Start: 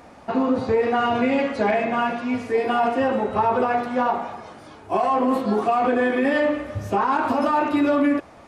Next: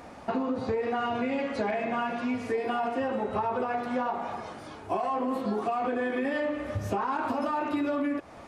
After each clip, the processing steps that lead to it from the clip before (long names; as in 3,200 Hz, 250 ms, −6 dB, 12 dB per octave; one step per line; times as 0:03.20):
downward compressor 5 to 1, threshold −27 dBFS, peak gain reduction 10.5 dB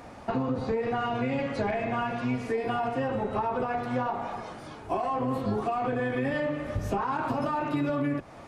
sub-octave generator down 1 octave, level −4 dB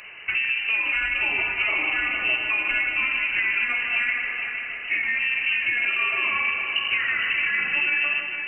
echo machine with several playback heads 153 ms, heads first and third, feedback 62%, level −9 dB
voice inversion scrambler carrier 2,900 Hz
level +3.5 dB